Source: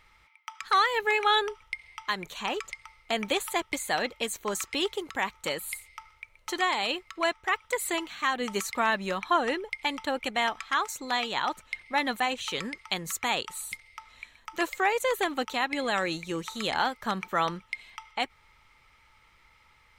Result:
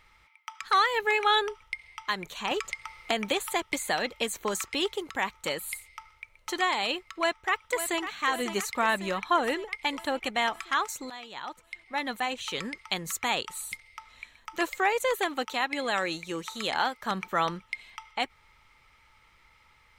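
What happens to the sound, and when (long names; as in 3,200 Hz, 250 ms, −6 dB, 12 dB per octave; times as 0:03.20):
0:02.51–0:04.69: multiband upward and downward compressor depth 70%
0:07.17–0:07.99: delay throw 550 ms, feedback 65%, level −10.5 dB
0:11.10–0:12.76: fade in, from −16 dB
0:15.15–0:17.11: low-shelf EQ 190 Hz −8 dB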